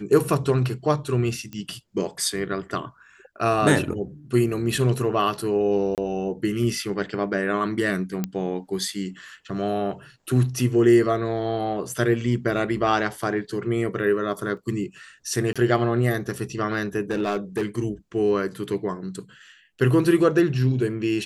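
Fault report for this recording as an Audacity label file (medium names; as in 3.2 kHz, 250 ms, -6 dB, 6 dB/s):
1.530000	1.530000	pop -22 dBFS
5.950000	5.980000	dropout 28 ms
8.240000	8.240000	pop -12 dBFS
14.570000	14.570000	dropout 3.1 ms
15.530000	15.560000	dropout 26 ms
17.110000	17.650000	clipped -19.5 dBFS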